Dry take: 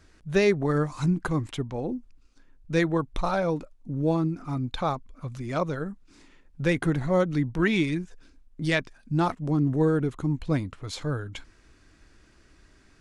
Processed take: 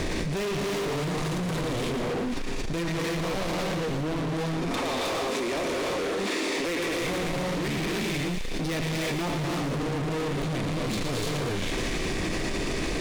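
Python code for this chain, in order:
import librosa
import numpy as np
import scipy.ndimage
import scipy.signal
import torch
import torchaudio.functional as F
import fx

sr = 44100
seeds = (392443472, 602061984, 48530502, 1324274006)

y = fx.bin_compress(x, sr, power=0.6)
y = fx.highpass(y, sr, hz=290.0, slope=24, at=(4.45, 7.01))
y = fx.rev_gated(y, sr, seeds[0], gate_ms=360, shape='rising', drr_db=-4.5)
y = np.clip(y, -10.0 ** (-23.5 / 20.0), 10.0 ** (-23.5 / 20.0))
y = fx.peak_eq(y, sr, hz=1400.0, db=-14.0, octaves=0.35)
y = fx.leveller(y, sr, passes=3)
y = fx.notch(y, sr, hz=840.0, q=17.0)
y = fx.echo_wet_highpass(y, sr, ms=115, feedback_pct=69, hz=1600.0, wet_db=-7)
y = fx.env_flatten(y, sr, amount_pct=100)
y = y * librosa.db_to_amplitude(-7.5)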